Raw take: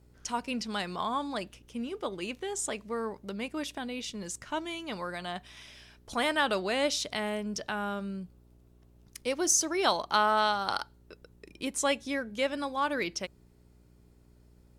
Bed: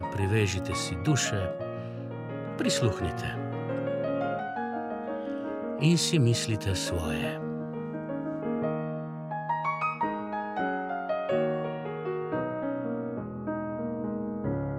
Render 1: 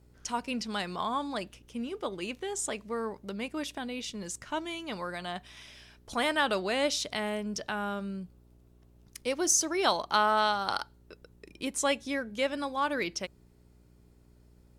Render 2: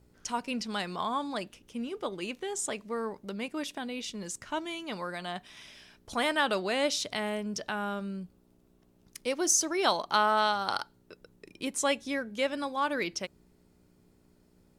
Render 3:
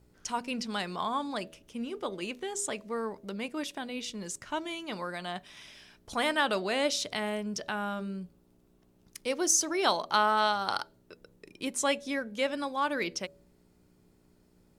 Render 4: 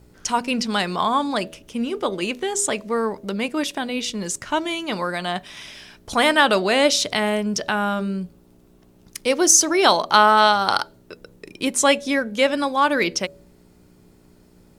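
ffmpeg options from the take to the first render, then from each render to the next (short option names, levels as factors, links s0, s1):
-af anull
-af "bandreject=f=60:t=h:w=4,bandreject=f=120:t=h:w=4"
-af "bandreject=f=80.9:t=h:w=4,bandreject=f=161.8:t=h:w=4,bandreject=f=242.7:t=h:w=4,bandreject=f=323.6:t=h:w=4,bandreject=f=404.5:t=h:w=4,bandreject=f=485.4:t=h:w=4,bandreject=f=566.3:t=h:w=4,bandreject=f=647.2:t=h:w=4"
-af "volume=3.76,alimiter=limit=0.891:level=0:latency=1"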